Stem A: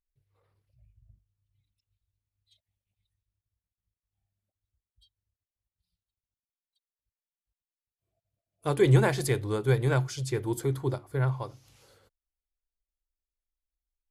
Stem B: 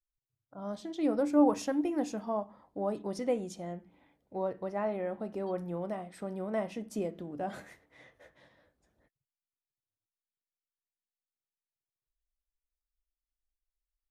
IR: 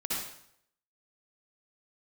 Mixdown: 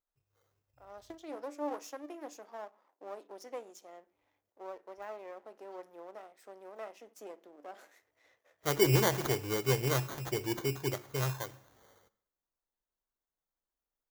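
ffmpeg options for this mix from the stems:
-filter_complex "[0:a]acrusher=samples=17:mix=1:aa=0.000001,volume=-3dB,asplit=3[a][b][c];[a]atrim=end=1.47,asetpts=PTS-STARTPTS,afade=t=out:st=1.466:d=0.004:c=hsin[d];[b]atrim=start=1.47:end=4.06,asetpts=PTS-STARTPTS,volume=0[e];[c]atrim=start=4.06,asetpts=PTS-STARTPTS,afade=t=in:d=0.004:c=hsin[f];[d][e][f]concat=n=3:v=0:a=1,asplit=3[g][h][i];[h]volume=-23dB[j];[1:a]aeval=exprs='if(lt(val(0),0),0.251*val(0),val(0))':c=same,highpass=f=320:w=0.5412,highpass=f=320:w=1.3066,adelay=250,volume=3dB[k];[i]apad=whole_len=633251[l];[k][l]sidechaingate=range=-10dB:threshold=-58dB:ratio=16:detection=peak[m];[2:a]atrim=start_sample=2205[n];[j][n]afir=irnorm=-1:irlink=0[o];[g][m][o]amix=inputs=3:normalize=0,lowshelf=f=160:g=-8.5,aexciter=amount=2:drive=1.4:freq=5.5k"

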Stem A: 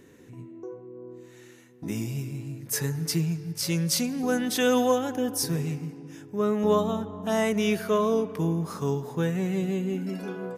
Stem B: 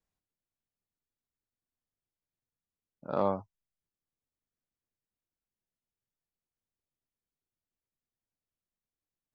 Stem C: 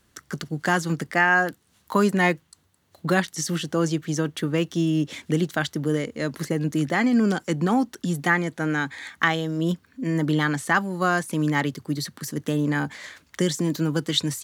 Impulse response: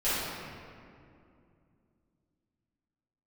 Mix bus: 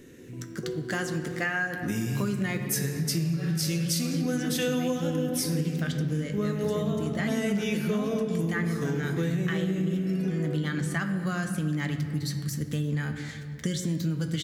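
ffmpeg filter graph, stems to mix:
-filter_complex "[0:a]volume=2.5dB,asplit=2[a][b];[b]volume=-13.5dB[c];[1:a]volume=-15.5dB,asplit=2[d][e];[2:a]asubboost=boost=7.5:cutoff=110,flanger=delay=8.9:depth=1.5:regen=66:speed=0.23:shape=triangular,adelay=250,volume=0.5dB,asplit=2[f][g];[g]volume=-18.5dB[h];[e]apad=whole_len=647518[i];[f][i]sidechaincompress=threshold=-58dB:ratio=8:attack=16:release=803[j];[3:a]atrim=start_sample=2205[k];[c][h]amix=inputs=2:normalize=0[l];[l][k]afir=irnorm=-1:irlink=0[m];[a][d][j][m]amix=inputs=4:normalize=0,equalizer=f=920:w=1.6:g=-10.5,acompressor=threshold=-25dB:ratio=5"

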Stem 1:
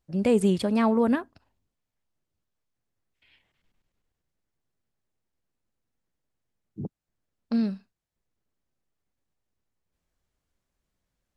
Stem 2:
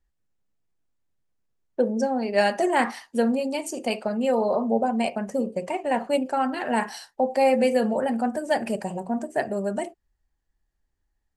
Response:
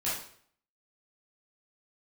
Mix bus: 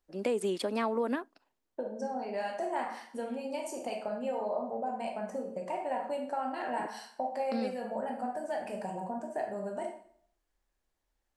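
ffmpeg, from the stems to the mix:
-filter_complex "[0:a]highpass=f=280:w=0.5412,highpass=f=280:w=1.3066,acompressor=threshold=-24dB:ratio=6,volume=-2.5dB[a];[1:a]acompressor=threshold=-28dB:ratio=6,equalizer=f=860:w=0.78:g=8,volume=-14dB,asplit=2[b][c];[c]volume=-4dB[d];[2:a]atrim=start_sample=2205[e];[d][e]afir=irnorm=-1:irlink=0[f];[a][b][f]amix=inputs=3:normalize=0"

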